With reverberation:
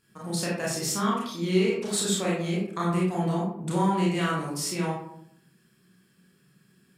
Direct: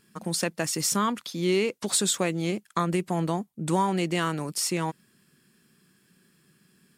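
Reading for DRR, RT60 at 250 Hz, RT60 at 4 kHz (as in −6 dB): −6.0 dB, 0.90 s, 0.35 s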